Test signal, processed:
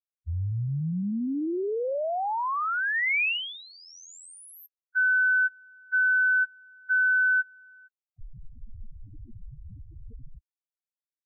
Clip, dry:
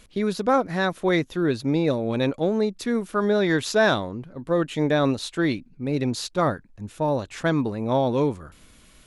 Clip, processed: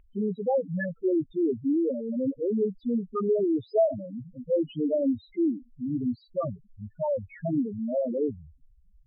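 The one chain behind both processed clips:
spectral peaks only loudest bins 2
high shelf with overshoot 3,300 Hz −9 dB, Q 3

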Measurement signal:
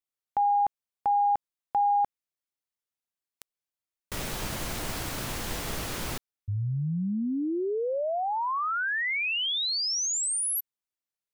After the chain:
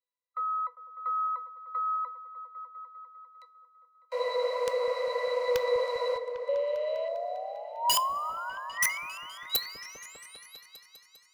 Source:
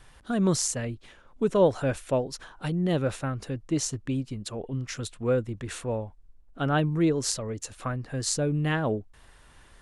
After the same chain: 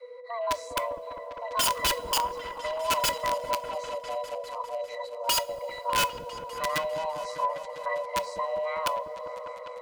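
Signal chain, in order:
loose part that buzzes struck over −31 dBFS, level −29 dBFS
low-shelf EQ 97 Hz −2.5 dB
harmonic and percussive parts rebalanced harmonic +4 dB
dynamic equaliser 710 Hz, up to +4 dB, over −36 dBFS, Q 1.1
in parallel at −3 dB: compressor whose output falls as the input rises −27 dBFS, ratio −1
on the sum: frequency shifter +460 Hz
resonances in every octave B, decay 0.11 s
wrap-around overflow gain 25 dB
on a send: echo whose low-pass opens from repeat to repeat 200 ms, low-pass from 400 Hz, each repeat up 1 octave, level −6 dB
on the sum: coupled-rooms reverb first 0.26 s, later 2.9 s, from −20 dB, DRR 14.5 dB
level +5.5 dB

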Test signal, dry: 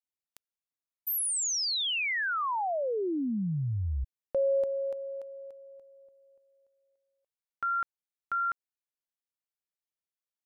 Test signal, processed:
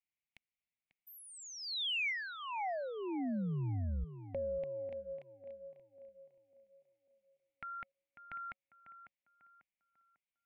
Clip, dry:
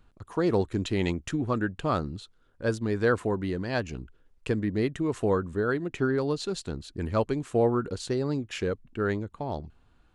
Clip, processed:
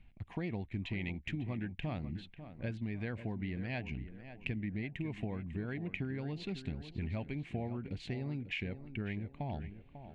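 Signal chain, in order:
drawn EQ curve 210 Hz 0 dB, 460 Hz −14 dB, 740 Hz −4 dB, 1,300 Hz −19 dB, 2,200 Hz +8 dB, 5,500 Hz −18 dB, 10,000 Hz −25 dB
downward compressor, threshold −36 dBFS
on a send: tape delay 546 ms, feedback 44%, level −10 dB, low-pass 1,900 Hz
on the sum: level +1 dB

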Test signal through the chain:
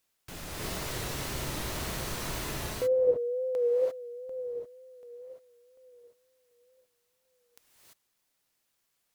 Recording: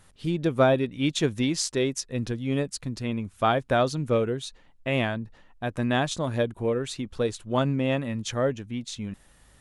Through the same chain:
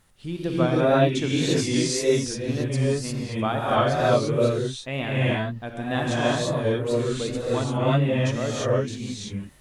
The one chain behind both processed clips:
reverb whose tail is shaped and stops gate 370 ms rising, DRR −7 dB
bit-depth reduction 12 bits, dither triangular
tape wow and flutter 66 cents
level −5 dB

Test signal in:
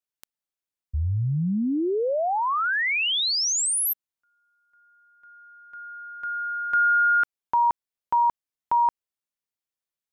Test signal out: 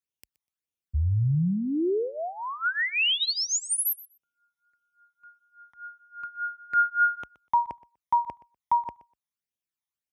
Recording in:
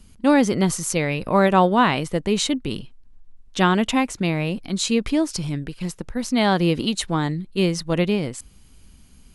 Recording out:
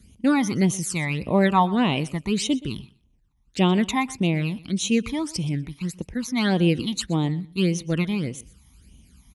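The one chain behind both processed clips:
high-pass filter 42 Hz 24 dB per octave
all-pass phaser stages 12, 1.7 Hz, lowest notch 460–1,600 Hz
on a send: repeating echo 123 ms, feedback 16%, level −20 dB

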